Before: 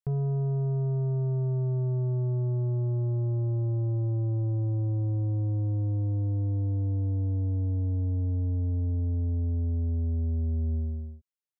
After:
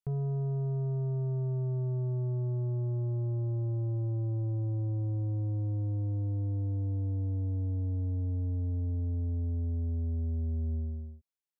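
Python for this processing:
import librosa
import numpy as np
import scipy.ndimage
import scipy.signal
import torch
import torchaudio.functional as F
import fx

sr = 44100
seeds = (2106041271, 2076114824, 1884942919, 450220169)

y = F.gain(torch.from_numpy(x), -4.0).numpy()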